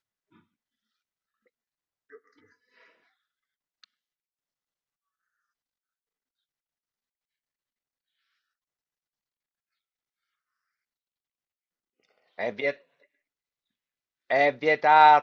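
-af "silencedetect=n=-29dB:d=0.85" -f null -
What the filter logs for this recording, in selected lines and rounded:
silence_start: 0.00
silence_end: 12.39 | silence_duration: 12.39
silence_start: 12.71
silence_end: 14.31 | silence_duration: 1.60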